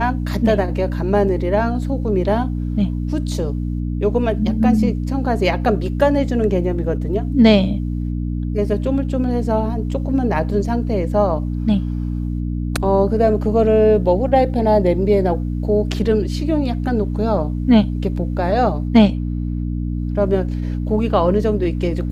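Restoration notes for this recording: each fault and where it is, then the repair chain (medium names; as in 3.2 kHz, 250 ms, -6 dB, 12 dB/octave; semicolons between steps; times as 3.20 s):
hum 60 Hz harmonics 5 -22 dBFS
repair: de-hum 60 Hz, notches 5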